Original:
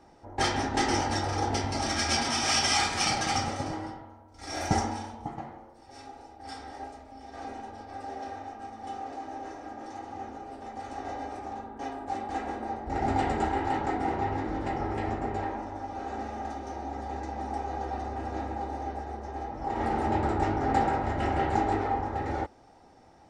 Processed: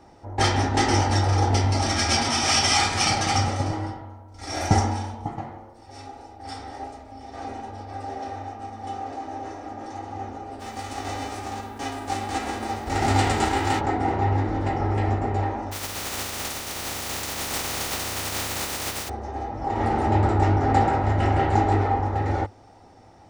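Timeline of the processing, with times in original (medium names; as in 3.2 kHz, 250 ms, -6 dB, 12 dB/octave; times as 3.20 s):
10.59–13.79 s: formants flattened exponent 0.6
15.71–19.08 s: spectral contrast reduction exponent 0.18
whole clip: peaking EQ 100 Hz +10 dB 0.29 oct; band-stop 1.6 kHz, Q 30; trim +5 dB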